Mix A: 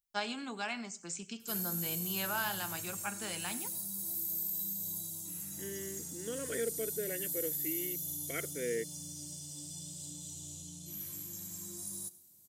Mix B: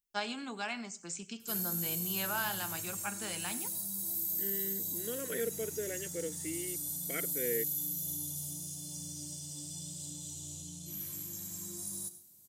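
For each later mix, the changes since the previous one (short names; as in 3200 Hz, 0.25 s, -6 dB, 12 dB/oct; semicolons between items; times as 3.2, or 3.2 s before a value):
second voice: entry -1.20 s; background: send +7.0 dB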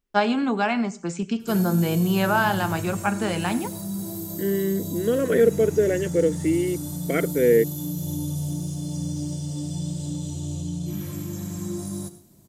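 master: remove pre-emphasis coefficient 0.9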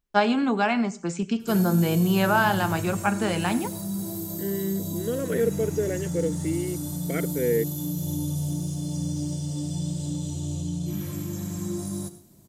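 second voice -6.5 dB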